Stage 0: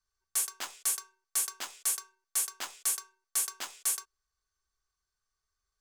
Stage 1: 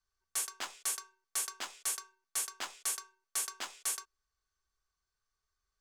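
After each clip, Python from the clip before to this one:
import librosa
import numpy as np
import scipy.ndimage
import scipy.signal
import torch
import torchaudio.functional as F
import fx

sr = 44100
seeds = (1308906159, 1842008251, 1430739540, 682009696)

y = fx.high_shelf(x, sr, hz=9800.0, db=-11.5)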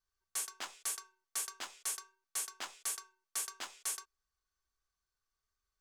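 y = fx.vibrato(x, sr, rate_hz=1.5, depth_cents=14.0)
y = y * librosa.db_to_amplitude(-3.0)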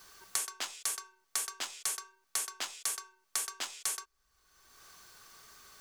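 y = fx.band_squash(x, sr, depth_pct=100)
y = y * librosa.db_to_amplitude(4.0)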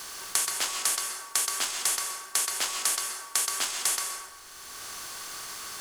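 y = fx.bin_compress(x, sr, power=0.6)
y = fx.rev_plate(y, sr, seeds[0], rt60_s=1.2, hf_ratio=0.55, predelay_ms=115, drr_db=3.5)
y = y * librosa.db_to_amplitude(5.0)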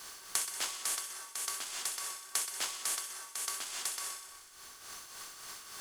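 y = fx.tremolo_shape(x, sr, shape='triangle', hz=3.5, depth_pct=65)
y = fx.echo_wet_highpass(y, sr, ms=62, feedback_pct=74, hz=2000.0, wet_db=-11.0)
y = y * librosa.db_to_amplitude(-6.0)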